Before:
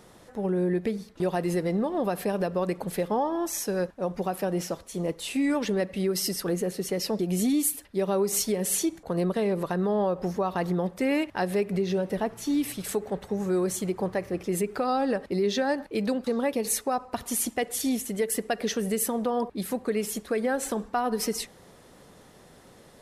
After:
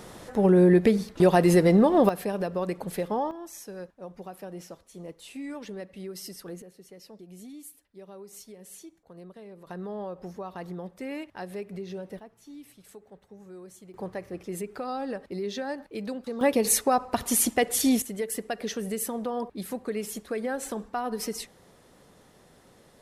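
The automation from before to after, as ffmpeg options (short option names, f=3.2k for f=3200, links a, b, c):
-af "asetnsamples=n=441:p=0,asendcmd='2.09 volume volume -2dB;3.31 volume volume -12dB;6.62 volume volume -20dB;9.67 volume volume -10.5dB;12.19 volume volume -19.5dB;13.94 volume volume -7dB;16.41 volume volume 4.5dB;18.02 volume volume -4dB',volume=8dB"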